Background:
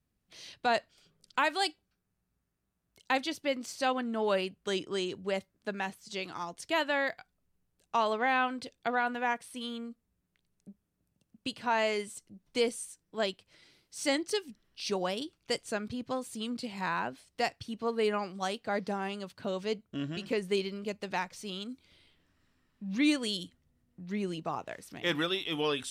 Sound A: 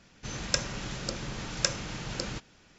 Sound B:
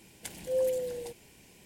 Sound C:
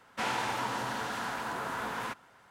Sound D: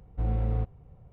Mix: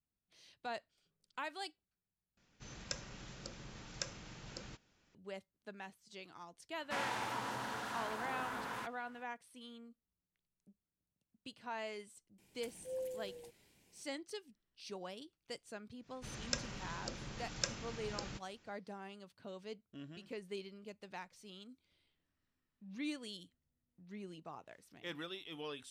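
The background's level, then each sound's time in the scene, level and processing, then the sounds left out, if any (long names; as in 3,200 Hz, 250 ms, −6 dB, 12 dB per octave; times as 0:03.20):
background −14.5 dB
0:02.37: overwrite with A −14.5 dB
0:06.73: mix in C −7 dB
0:12.38: mix in B −13.5 dB
0:15.99: mix in A −10 dB, fades 0.10 s
not used: D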